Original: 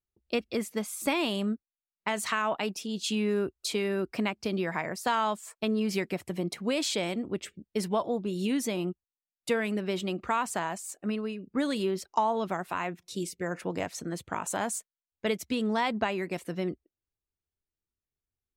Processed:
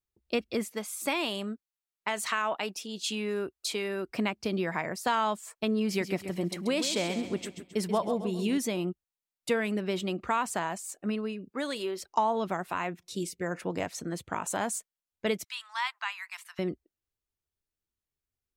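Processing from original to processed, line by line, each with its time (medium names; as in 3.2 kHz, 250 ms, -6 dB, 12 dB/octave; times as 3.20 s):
0.70–4.09 s: bass shelf 270 Hz -10.5 dB
5.87–8.58 s: feedback delay 134 ms, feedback 43%, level -10 dB
11.50–12.00 s: high-pass 410 Hz
15.44–16.59 s: steep high-pass 950 Hz 48 dB/octave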